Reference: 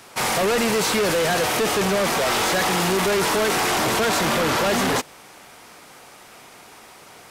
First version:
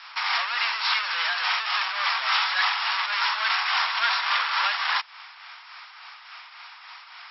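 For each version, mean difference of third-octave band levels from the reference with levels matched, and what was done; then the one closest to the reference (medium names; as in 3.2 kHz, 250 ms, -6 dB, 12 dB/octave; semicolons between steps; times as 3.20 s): 20.0 dB: in parallel at +0.5 dB: compression, threshold -30 dBFS, peak gain reduction 10 dB; on the sum: steep high-pass 950 Hz 36 dB/octave; tremolo triangle 3.5 Hz, depth 50%; brick-wall FIR low-pass 5.6 kHz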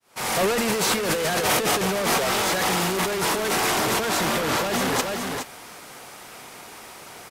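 4.0 dB: fade-in on the opening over 0.61 s; treble shelf 10 kHz +4 dB; delay 420 ms -11 dB; compressor with a negative ratio -22 dBFS, ratio -0.5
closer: second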